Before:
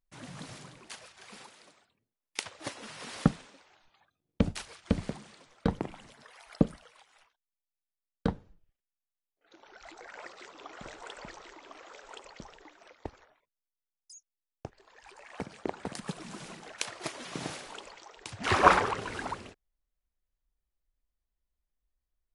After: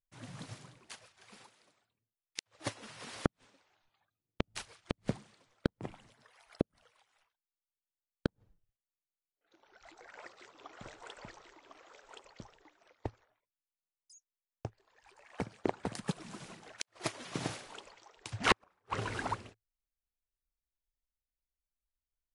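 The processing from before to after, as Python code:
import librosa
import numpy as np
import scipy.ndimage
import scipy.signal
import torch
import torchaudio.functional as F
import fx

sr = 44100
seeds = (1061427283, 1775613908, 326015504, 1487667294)

y = fx.peak_eq(x, sr, hz=110.0, db=9.5, octaves=0.33)
y = fx.gate_flip(y, sr, shuts_db=-15.0, range_db=-41)
y = fx.upward_expand(y, sr, threshold_db=-57.0, expansion=1.5)
y = y * 10.0 ** (4.5 / 20.0)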